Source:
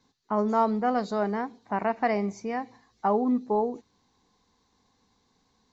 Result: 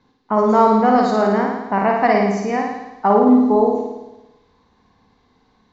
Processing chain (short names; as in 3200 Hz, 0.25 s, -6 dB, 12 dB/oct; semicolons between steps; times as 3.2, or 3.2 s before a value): low-pass opened by the level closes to 2900 Hz, open at -23.5 dBFS; on a send: flutter echo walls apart 9.5 m, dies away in 1 s; on the sum: gain +8.5 dB